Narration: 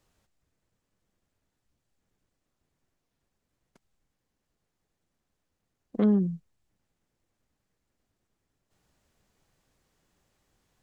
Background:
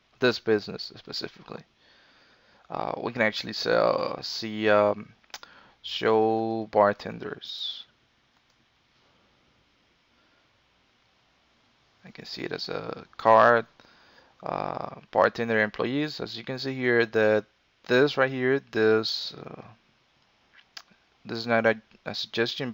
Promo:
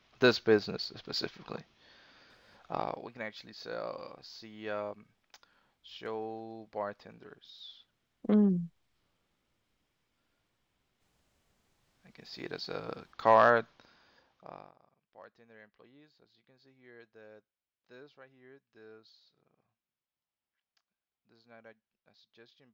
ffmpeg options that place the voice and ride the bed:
ffmpeg -i stem1.wav -i stem2.wav -filter_complex "[0:a]adelay=2300,volume=-2.5dB[link_01];[1:a]volume=10dB,afade=type=out:start_time=2.72:duration=0.36:silence=0.177828,afade=type=in:start_time=11.72:duration=1.23:silence=0.266073,afade=type=out:start_time=13.73:duration=1.01:silence=0.0421697[link_02];[link_01][link_02]amix=inputs=2:normalize=0" out.wav

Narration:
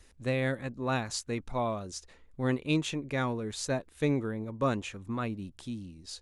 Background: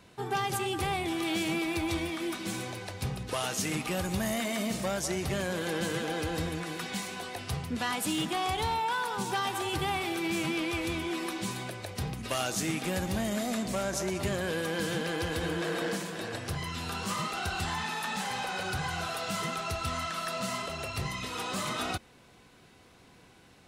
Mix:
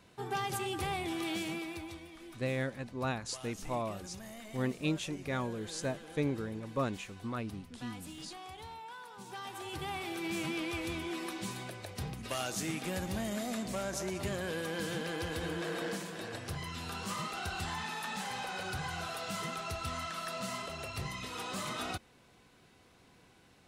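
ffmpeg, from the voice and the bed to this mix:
ffmpeg -i stem1.wav -i stem2.wav -filter_complex "[0:a]adelay=2150,volume=-4.5dB[link_01];[1:a]volume=7.5dB,afade=type=out:start_time=1.23:duration=0.76:silence=0.237137,afade=type=in:start_time=9.16:duration=1.22:silence=0.251189[link_02];[link_01][link_02]amix=inputs=2:normalize=0" out.wav

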